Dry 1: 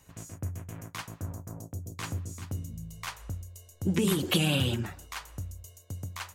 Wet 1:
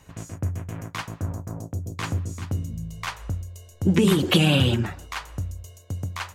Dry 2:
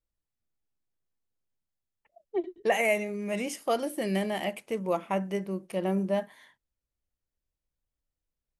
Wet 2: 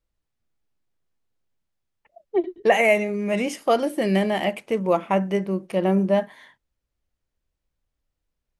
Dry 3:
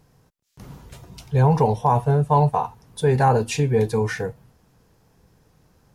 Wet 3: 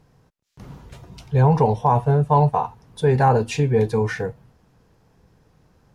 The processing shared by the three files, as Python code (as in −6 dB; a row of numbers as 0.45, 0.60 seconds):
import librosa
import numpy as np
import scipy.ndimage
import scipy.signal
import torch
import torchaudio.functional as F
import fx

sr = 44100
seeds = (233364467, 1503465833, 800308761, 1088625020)

y = fx.high_shelf(x, sr, hz=6800.0, db=-11.0)
y = y * 10.0 ** (-6 / 20.0) / np.max(np.abs(y))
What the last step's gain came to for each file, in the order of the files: +8.0, +8.0, +1.0 decibels